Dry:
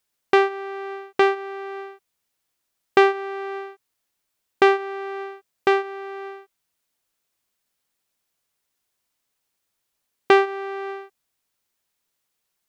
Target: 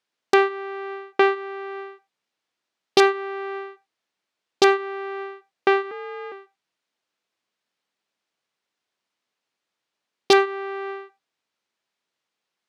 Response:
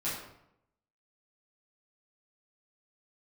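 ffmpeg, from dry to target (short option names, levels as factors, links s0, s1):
-filter_complex "[0:a]aeval=exprs='(mod(1.88*val(0)+1,2)-1)/1.88':c=same,highpass=180,lowpass=4600,asplit=2[s0][s1];[1:a]atrim=start_sample=2205,afade=t=out:st=0.15:d=0.01,atrim=end_sample=7056[s2];[s1][s2]afir=irnorm=-1:irlink=0,volume=0.1[s3];[s0][s3]amix=inputs=2:normalize=0,asettb=1/sr,asplit=3[s4][s5][s6];[s4]atrim=end=5.914[s7];[s5]atrim=start=5.91:end=6.32,asetpts=PTS-STARTPTS,afade=t=in:d=0.004:c=qsin,afade=t=out:st=0.406:d=0.004:c=qsin,afreqshift=53[s8];[s6]atrim=start=6.316[s9];[s7][s8]acrossfade=d=0.004:c1=hsin:c2=qsin[s10];[s10][s9]acrossfade=d=0.004:c1=qsin:c2=hsin"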